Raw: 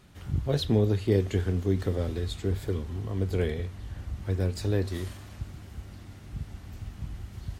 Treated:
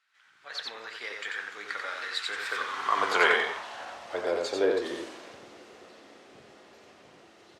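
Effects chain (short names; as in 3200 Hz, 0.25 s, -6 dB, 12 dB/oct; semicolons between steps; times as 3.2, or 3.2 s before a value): Doppler pass-by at 3.07, 22 m/s, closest 7 m; LPF 6400 Hz 12 dB/oct; low shelf 130 Hz -8.5 dB; de-hum 53.45 Hz, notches 33; dynamic EQ 1200 Hz, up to +5 dB, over -58 dBFS, Q 0.87; in parallel at -1 dB: compressor, threshold -53 dBFS, peak gain reduction 25.5 dB; on the sum: high-pass sweep 1500 Hz -> 430 Hz, 2.38–4.93; on a send: echo 90 ms -3.5 dB; on the sum: AGC gain up to 14 dB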